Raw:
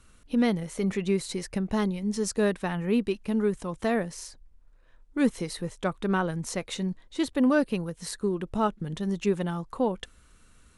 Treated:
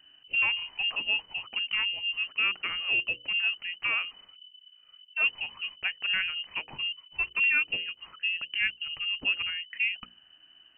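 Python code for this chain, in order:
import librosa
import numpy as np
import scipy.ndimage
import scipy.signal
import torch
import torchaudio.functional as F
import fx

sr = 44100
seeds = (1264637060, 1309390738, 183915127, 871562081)

y = fx.freq_invert(x, sr, carrier_hz=3000)
y = fx.hum_notches(y, sr, base_hz=60, count=9)
y = F.gain(torch.from_numpy(y), -3.0).numpy()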